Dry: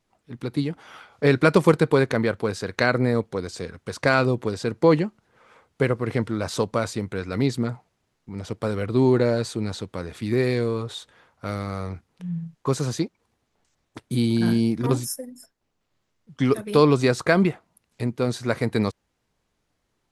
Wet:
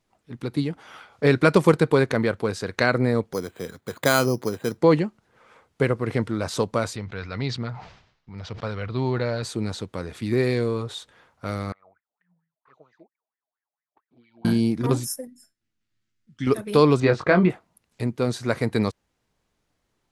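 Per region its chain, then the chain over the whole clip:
3.33–4.78 s: high-pass 120 Hz + careless resampling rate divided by 8×, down filtered, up hold
6.96–9.43 s: low-pass 5.1 kHz 24 dB/octave + peaking EQ 310 Hz -10 dB 1.7 oct + decay stretcher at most 86 dB/s
11.72–14.45 s: wah-wah 4.4 Hz 620–2000 Hz, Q 15 + touch-sensitive flanger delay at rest 10.4 ms, full sweep at -48.5 dBFS + distance through air 160 m
15.27–16.47 s: low-pass 11 kHz + high-order bell 680 Hz -12.5 dB + feedback comb 110 Hz, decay 0.18 s, mix 70%
17.00–17.50 s: low-pass 3 kHz + doubling 22 ms -5.5 dB
whole clip: none

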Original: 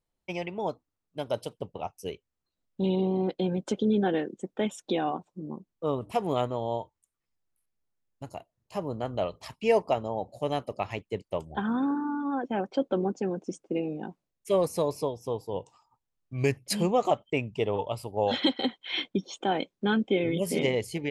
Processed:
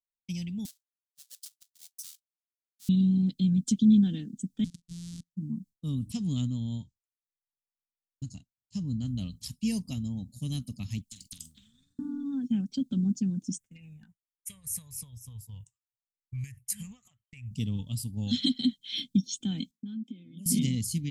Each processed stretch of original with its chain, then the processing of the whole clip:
0.65–2.89 s: square wave that keeps the level + brick-wall FIR high-pass 540 Hz + compression 4:1, threshold -46 dBFS
4.64–5.31 s: sorted samples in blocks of 256 samples + Bessel low-pass 7 kHz, order 8 + level held to a coarse grid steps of 22 dB
6.12–9.08 s: steep low-pass 7.7 kHz + band-stop 2.3 kHz, Q 15
11.11–11.99 s: compression 3:1, threshold -39 dBFS + doubling 47 ms -11.5 dB + spectrum-flattening compressor 10:1
13.58–17.51 s: FFT filter 100 Hz 0 dB, 300 Hz -26 dB, 440 Hz -10 dB, 1.9 kHz +15 dB, 4.4 kHz -15 dB, 6.9 kHz -3 dB, 12 kHz +1 dB + compression 8:1, threshold -36 dBFS
19.71–20.46 s: treble shelf 2.5 kHz -10 dB + compression 20:1, threshold -36 dBFS + high-pass 200 Hz 24 dB/octave
whole clip: FFT filter 250 Hz 0 dB, 370 Hz -29 dB, 840 Hz -26 dB, 3.3 kHz -5 dB, 7.6 kHz +4 dB; expander -50 dBFS; high-order bell 1.2 kHz -10.5 dB 2.6 oct; trim +6.5 dB

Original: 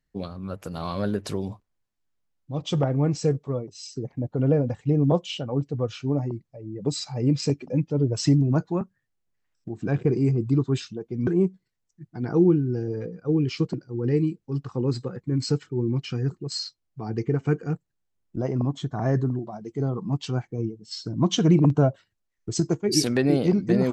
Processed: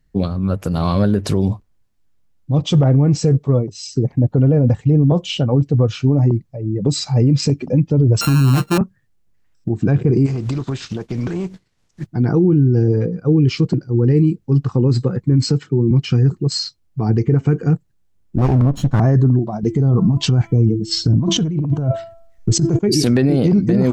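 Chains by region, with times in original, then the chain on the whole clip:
8.21–8.78 s: sorted samples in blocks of 32 samples + doubling 15 ms -5.5 dB
10.25–12.05 s: spectral contrast reduction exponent 0.58 + low-pass 6.9 kHz + compression 8:1, threshold -33 dBFS
15.47–15.91 s: high-pass 110 Hz 24 dB/octave + treble shelf 8.8 kHz -5.5 dB
18.38–19.00 s: comb filter that takes the minimum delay 0.72 ms + peaking EQ 710 Hz +6 dB 0.51 oct
19.63–22.79 s: bass shelf 93 Hz +10 dB + de-hum 334 Hz, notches 10 + compressor with a negative ratio -28 dBFS
whole clip: bass shelf 260 Hz +10 dB; loudness maximiser +14.5 dB; trim -6 dB

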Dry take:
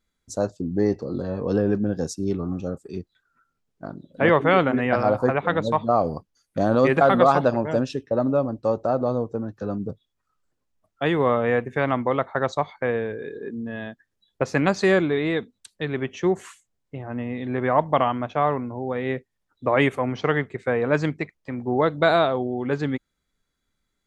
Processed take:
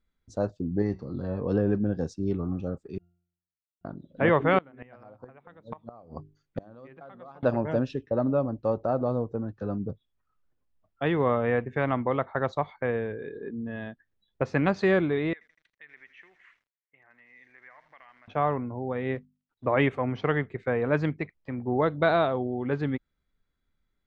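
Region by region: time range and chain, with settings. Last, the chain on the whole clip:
0.82–1.23 s: peaking EQ 490 Hz -7.5 dB 1.4 oct + de-hum 187.8 Hz, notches 35
2.98–3.85 s: Schmitt trigger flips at -45.5 dBFS + compression 2:1, threshold -51 dBFS + pitch-class resonator F, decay 0.66 s
4.58–7.43 s: hum notches 50/100/150/200/250/300/350/400 Hz + inverted gate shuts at -13 dBFS, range -26 dB
15.33–18.28 s: compression 3:1, threshold -31 dBFS + band-pass filter 2 kHz, Q 4.4 + bit-crushed delay 81 ms, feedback 80%, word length 9-bit, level -12 dB
19.15–19.65 s: companding laws mixed up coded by A + hum notches 50/100/150/200/250 Hz
whole clip: low-pass 3.4 kHz 12 dB/octave; bass shelf 110 Hz +7.5 dB; trim -4.5 dB

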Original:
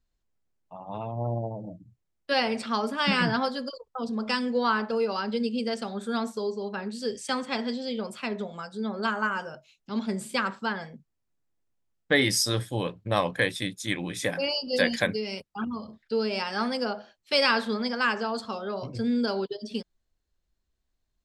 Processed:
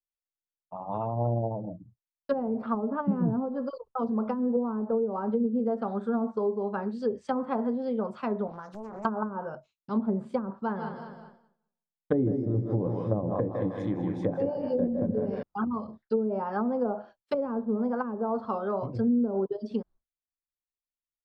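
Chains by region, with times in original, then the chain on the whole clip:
8.47–9.05 s: high-pass 87 Hz + compression 5:1, threshold -39 dBFS + loudspeaker Doppler distortion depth 0.94 ms
10.52–15.43 s: peaking EQ 1.5 kHz -7 dB 2 oct + feedback delay 195 ms, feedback 45%, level -9 dB + modulated delay 155 ms, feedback 35%, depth 58 cents, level -7.5 dB
whole clip: expander -48 dBFS; low-pass that closes with the level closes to 370 Hz, closed at -23 dBFS; resonant high shelf 1.6 kHz -11 dB, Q 1.5; trim +2 dB

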